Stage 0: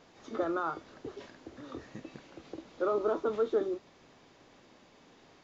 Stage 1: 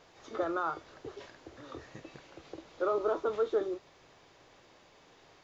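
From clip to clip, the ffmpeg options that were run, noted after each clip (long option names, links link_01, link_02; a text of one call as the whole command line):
ffmpeg -i in.wav -af "equalizer=frequency=230:width=1.8:gain=-10.5,volume=1dB" out.wav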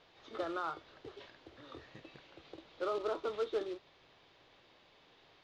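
ffmpeg -i in.wav -af "acrusher=bits=4:mode=log:mix=0:aa=0.000001,lowpass=frequency=3700:width_type=q:width=2,volume=-6dB" out.wav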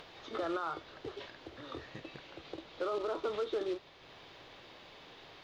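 ffmpeg -i in.wav -af "alimiter=level_in=9dB:limit=-24dB:level=0:latency=1:release=76,volume=-9dB,acompressor=mode=upward:threshold=-54dB:ratio=2.5,volume=6.5dB" out.wav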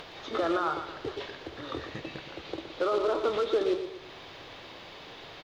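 ffmpeg -i in.wav -af "aecho=1:1:118|236|354|472:0.355|0.138|0.054|0.021,volume=7.5dB" out.wav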